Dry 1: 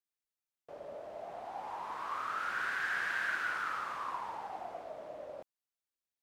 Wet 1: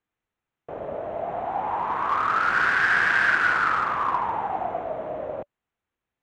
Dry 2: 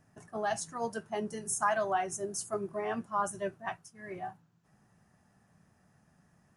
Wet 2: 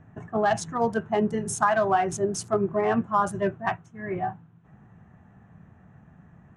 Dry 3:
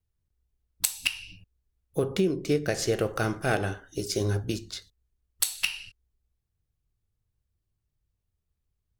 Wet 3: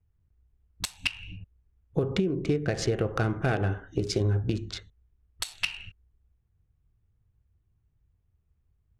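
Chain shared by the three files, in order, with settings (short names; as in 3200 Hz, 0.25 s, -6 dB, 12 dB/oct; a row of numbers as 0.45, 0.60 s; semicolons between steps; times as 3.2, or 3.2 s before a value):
Wiener smoothing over 9 samples; bell 82 Hz +6 dB 2.4 oct; notch 580 Hz, Q 15; compressor, threshold -28 dBFS; air absorption 70 m; normalise peaks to -9 dBFS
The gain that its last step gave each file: +15.5, +11.0, +5.5 dB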